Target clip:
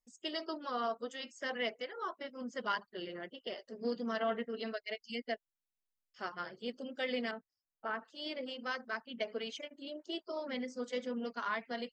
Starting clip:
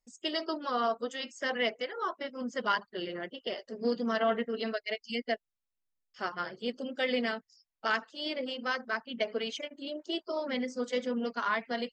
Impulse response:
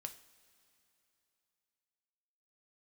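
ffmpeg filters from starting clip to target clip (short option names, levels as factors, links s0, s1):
-filter_complex "[0:a]asettb=1/sr,asplit=3[s0][s1][s2];[s0]atrim=end=7.314[s3];[s1]atrim=start=7.31:end=8.05,asetpts=PTS-STARTPTS,afade=t=in:d=0.004:c=qsin,afade=t=out:st=0.736:d=0.004:c=qsin,lowpass=1400[s4];[s2]atrim=start=8.046[s5];[s3][s4]acrossfade=d=0.004:c1=hsin:c2=qsin[s6];[s6][s5]acrossfade=d=0.004:c1=qsin:c2=hsin,volume=0.501"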